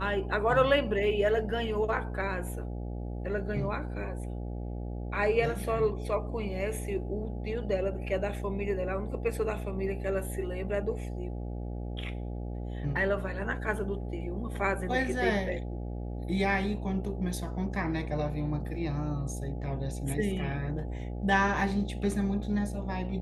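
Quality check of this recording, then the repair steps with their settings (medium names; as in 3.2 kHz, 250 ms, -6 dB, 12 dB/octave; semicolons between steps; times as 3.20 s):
buzz 60 Hz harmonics 14 -36 dBFS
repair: de-hum 60 Hz, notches 14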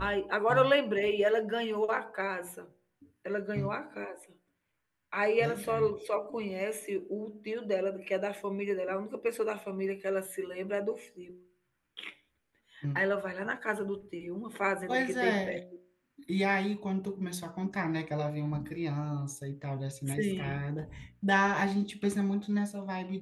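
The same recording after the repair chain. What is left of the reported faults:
nothing left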